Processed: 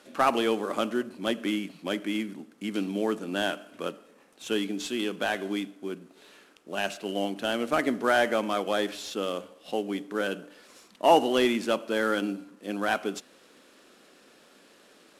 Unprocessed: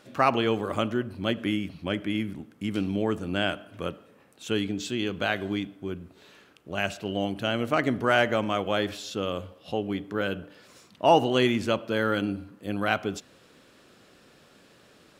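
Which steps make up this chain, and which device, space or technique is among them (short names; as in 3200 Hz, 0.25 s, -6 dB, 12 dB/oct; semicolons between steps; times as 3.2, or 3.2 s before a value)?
early wireless headset (HPF 210 Hz 24 dB/oct; CVSD 64 kbps)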